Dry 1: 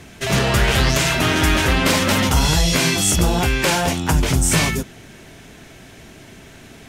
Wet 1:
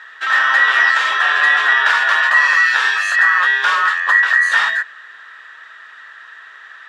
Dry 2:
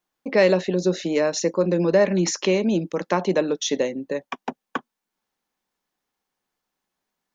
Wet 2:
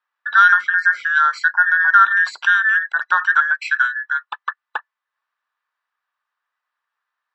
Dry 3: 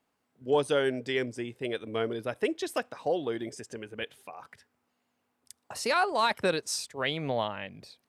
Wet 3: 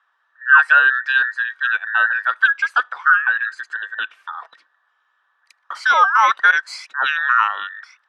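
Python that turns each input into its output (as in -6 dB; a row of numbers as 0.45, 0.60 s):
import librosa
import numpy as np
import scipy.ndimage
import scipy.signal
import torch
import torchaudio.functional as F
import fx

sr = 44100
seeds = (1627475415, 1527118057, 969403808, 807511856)

y = fx.band_invert(x, sr, width_hz=2000)
y = fx.ladder_bandpass(y, sr, hz=1500.0, resonance_pct=30)
y = librosa.util.normalize(y) * 10.0 ** (-1.5 / 20.0)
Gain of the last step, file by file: +14.5, +14.5, +23.0 dB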